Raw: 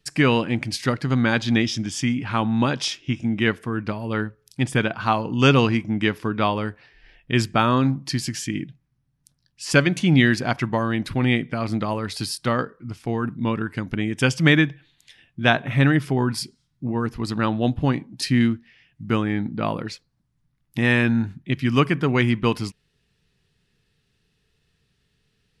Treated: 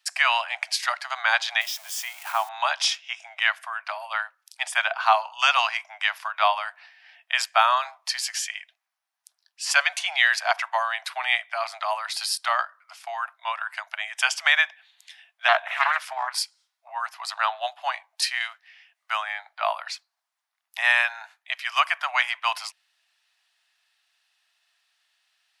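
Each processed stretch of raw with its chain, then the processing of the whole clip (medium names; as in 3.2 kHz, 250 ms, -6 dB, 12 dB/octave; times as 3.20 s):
1.61–2.49 s: zero-crossing glitches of -24 dBFS + high-pass 540 Hz + tilt shelf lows +8 dB, about 770 Hz
15.48–16.40 s: high-pass 60 Hz + bass shelf 140 Hz +10.5 dB + loudspeaker Doppler distortion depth 0.54 ms
whole clip: steep high-pass 640 Hz 96 dB/octave; loudness maximiser +8 dB; trim -5 dB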